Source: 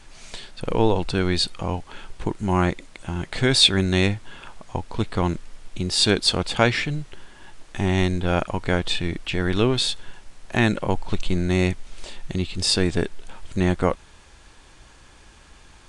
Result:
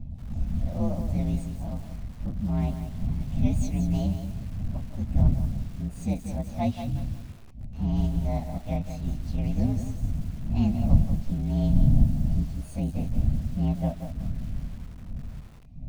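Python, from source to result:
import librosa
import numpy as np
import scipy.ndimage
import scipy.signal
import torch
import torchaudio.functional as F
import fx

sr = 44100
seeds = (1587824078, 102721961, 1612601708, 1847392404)

y = fx.partial_stretch(x, sr, pct=122)
y = fx.dmg_wind(y, sr, seeds[0], corner_hz=89.0, level_db=-25.0)
y = fx.curve_eq(y, sr, hz=(130.0, 240.0, 420.0, 660.0, 1400.0, 2300.0, 4600.0, 11000.0), db=(0, 4, -21, 1, -27, -14, -18, -24))
y = fx.echo_crushed(y, sr, ms=182, feedback_pct=35, bits=7, wet_db=-8)
y = y * librosa.db_to_amplitude(-3.5)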